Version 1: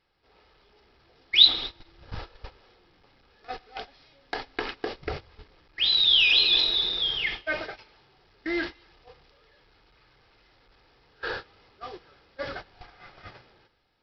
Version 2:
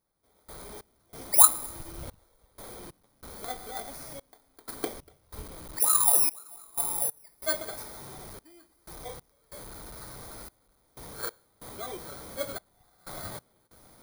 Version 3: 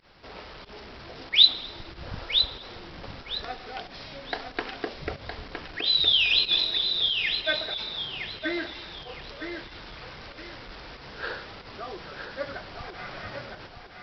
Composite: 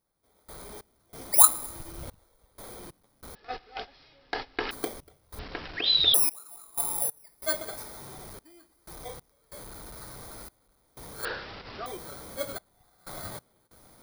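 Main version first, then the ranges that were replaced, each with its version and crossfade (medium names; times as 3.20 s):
2
3.35–4.71 s: from 1
5.39–6.14 s: from 3
11.25–11.86 s: from 3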